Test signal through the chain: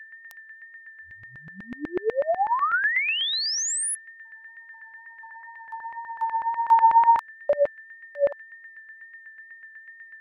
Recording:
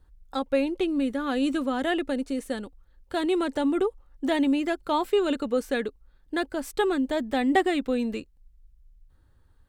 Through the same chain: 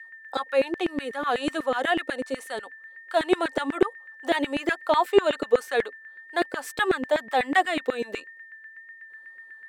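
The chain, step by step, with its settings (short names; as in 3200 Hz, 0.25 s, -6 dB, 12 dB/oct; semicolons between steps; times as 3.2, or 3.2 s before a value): whine 1800 Hz -48 dBFS; wow and flutter 20 cents; LFO high-pass saw down 8.1 Hz 360–2000 Hz; gain +1.5 dB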